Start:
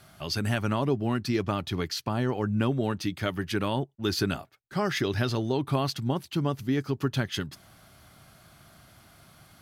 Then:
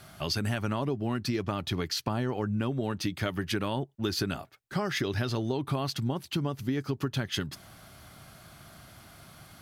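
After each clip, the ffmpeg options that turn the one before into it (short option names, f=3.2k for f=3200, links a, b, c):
-af "acompressor=threshold=-30dB:ratio=6,volume=3.5dB"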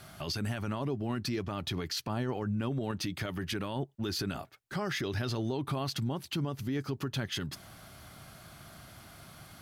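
-af "alimiter=level_in=1dB:limit=-24dB:level=0:latency=1:release=28,volume=-1dB"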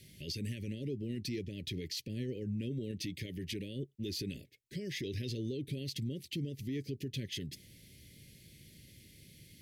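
-af "asuperstop=centerf=1000:order=12:qfactor=0.71,volume=-4.5dB"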